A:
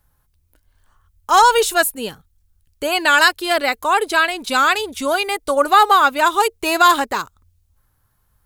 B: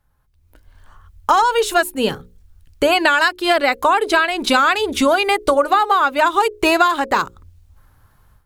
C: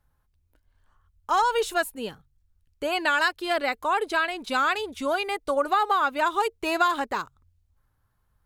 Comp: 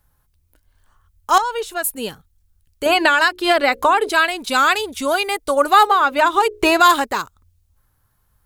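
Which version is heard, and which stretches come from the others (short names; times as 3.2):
A
1.38–1.84 from C
2.86–4.09 from B
5.87–6.8 from B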